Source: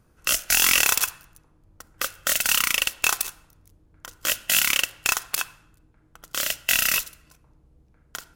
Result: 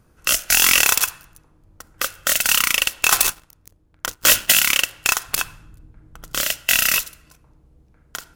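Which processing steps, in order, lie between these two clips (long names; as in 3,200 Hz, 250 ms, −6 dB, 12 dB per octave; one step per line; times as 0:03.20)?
0:03.11–0:04.52: leveller curve on the samples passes 3
0:05.28–0:06.42: low-shelf EQ 240 Hz +11 dB
level +4 dB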